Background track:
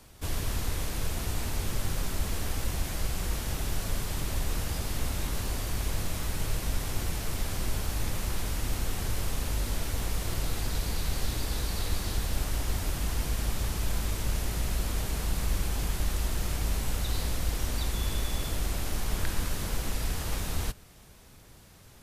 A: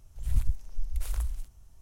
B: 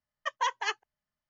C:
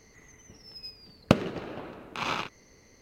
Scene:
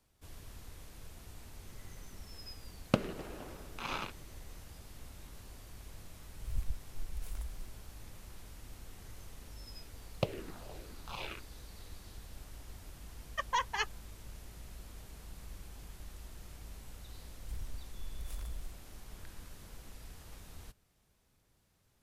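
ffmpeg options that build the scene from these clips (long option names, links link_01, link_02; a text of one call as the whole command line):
ffmpeg -i bed.wav -i cue0.wav -i cue1.wav -i cue2.wav -filter_complex "[3:a]asplit=2[link_01][link_02];[1:a]asplit=2[link_03][link_04];[0:a]volume=-19.5dB[link_05];[link_01]aecho=1:1:1102:0.0668[link_06];[link_02]asplit=2[link_07][link_08];[link_08]afreqshift=-2.1[link_09];[link_07][link_09]amix=inputs=2:normalize=1[link_10];[link_04]acompressor=threshold=-30dB:ratio=6:attack=3.2:release=140:knee=1:detection=peak[link_11];[link_06]atrim=end=3.01,asetpts=PTS-STARTPTS,volume=-8dB,afade=type=in:duration=0.004:curve=hsin,afade=type=out:start_time=3.006:duration=0.004:curve=hsin,adelay=1630[link_12];[link_03]atrim=end=1.81,asetpts=PTS-STARTPTS,volume=-10.5dB,afade=type=in:duration=0.004:curve=hsin,afade=type=out:start_time=1.806:duration=0.004:curve=hsin,adelay=6210[link_13];[link_10]atrim=end=3.01,asetpts=PTS-STARTPTS,volume=-9dB,afade=type=in:duration=0.004:curve=hsin,afade=type=out:start_time=3.006:duration=0.004:curve=hsin,adelay=8920[link_14];[2:a]atrim=end=1.29,asetpts=PTS-STARTPTS,volume=-3dB,afade=type=in:duration=0.004:curve=hsin,afade=type=out:start_time=1.286:duration=0.004:curve=hsin,adelay=13120[link_15];[link_11]atrim=end=1.81,asetpts=PTS-STARTPTS,volume=-6.5dB,afade=type=in:duration=0.004:curve=hsin,afade=type=out:start_time=1.806:duration=0.004:curve=hsin,adelay=17250[link_16];[link_05][link_12][link_13][link_14][link_15][link_16]amix=inputs=6:normalize=0" out.wav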